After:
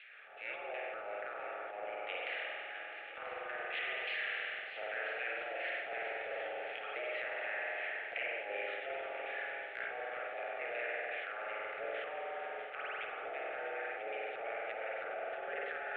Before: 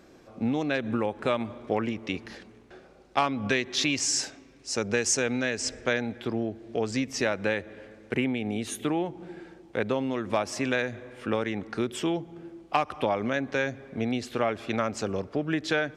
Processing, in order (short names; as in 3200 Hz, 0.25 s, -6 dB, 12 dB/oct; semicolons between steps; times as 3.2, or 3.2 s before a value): spectral limiter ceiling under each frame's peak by 16 dB; LFO band-pass saw down 2.7 Hz 580–2700 Hz; mistuned SSB +87 Hz 370–3500 Hz; treble ducked by the level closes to 880 Hz, closed at -33.5 dBFS; spring tank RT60 2 s, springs 47 ms, chirp 75 ms, DRR -1.5 dB; transient shaper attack -9 dB, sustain +5 dB; reverse; compressor, threshold -41 dBFS, peak gain reduction 10 dB; reverse; fixed phaser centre 2400 Hz, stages 4; multi-head echo 0.329 s, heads second and third, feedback 72%, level -12.5 dB; gain +9 dB